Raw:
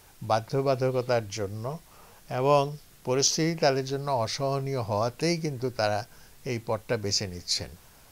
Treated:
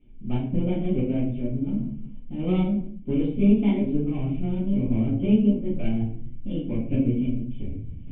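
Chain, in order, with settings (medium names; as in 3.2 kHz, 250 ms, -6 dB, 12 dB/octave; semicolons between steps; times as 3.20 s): sawtooth pitch modulation +6.5 st, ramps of 951 ms; tilt EQ -3 dB/octave; power-law waveshaper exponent 1.4; reverberation RT60 0.50 s, pre-delay 4 ms, DRR -9.5 dB; reverse; upward compressor, threshold -18 dBFS; reverse; cascade formant filter i; trim +5 dB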